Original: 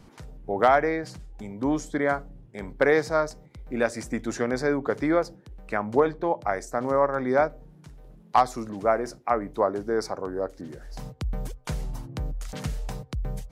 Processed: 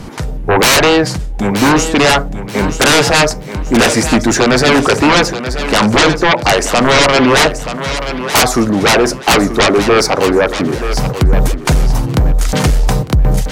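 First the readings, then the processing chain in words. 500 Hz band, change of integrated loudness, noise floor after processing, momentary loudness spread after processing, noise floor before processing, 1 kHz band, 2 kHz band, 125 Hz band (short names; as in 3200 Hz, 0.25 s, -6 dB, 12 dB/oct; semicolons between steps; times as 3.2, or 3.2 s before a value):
+12.0 dB, +15.0 dB, -24 dBFS, 9 LU, -52 dBFS, +13.0 dB, +18.5 dB, +20.0 dB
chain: dynamic EQ 1200 Hz, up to +4 dB, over -33 dBFS, Q 1.1; sine folder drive 20 dB, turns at -4.5 dBFS; thinning echo 0.93 s, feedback 31%, high-pass 200 Hz, level -10 dB; gain -1 dB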